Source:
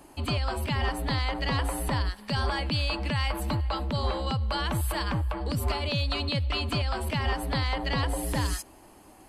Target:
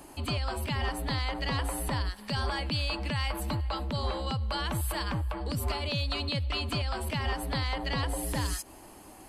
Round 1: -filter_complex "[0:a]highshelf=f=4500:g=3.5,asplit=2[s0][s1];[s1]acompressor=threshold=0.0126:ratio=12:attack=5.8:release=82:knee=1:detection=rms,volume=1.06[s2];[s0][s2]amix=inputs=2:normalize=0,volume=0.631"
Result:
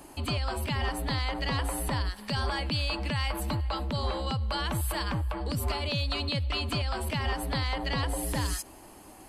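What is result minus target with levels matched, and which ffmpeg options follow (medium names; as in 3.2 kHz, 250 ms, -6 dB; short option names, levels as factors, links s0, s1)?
compression: peak gain reduction -8.5 dB
-filter_complex "[0:a]highshelf=f=4500:g=3.5,asplit=2[s0][s1];[s1]acompressor=threshold=0.00447:ratio=12:attack=5.8:release=82:knee=1:detection=rms,volume=1.06[s2];[s0][s2]amix=inputs=2:normalize=0,volume=0.631"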